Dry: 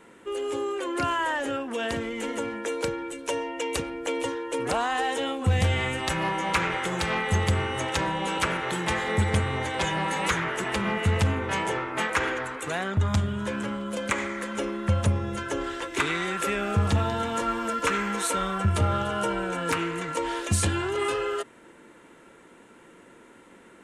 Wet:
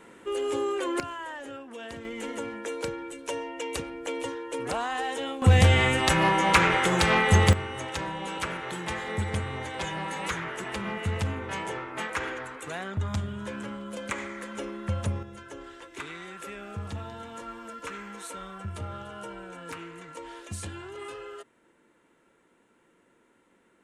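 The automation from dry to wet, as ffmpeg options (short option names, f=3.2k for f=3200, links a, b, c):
-af "asetnsamples=n=441:p=0,asendcmd='1 volume volume -11dB;2.05 volume volume -4dB;5.42 volume volume 5dB;7.53 volume volume -6dB;15.23 volume volume -13dB',volume=1dB"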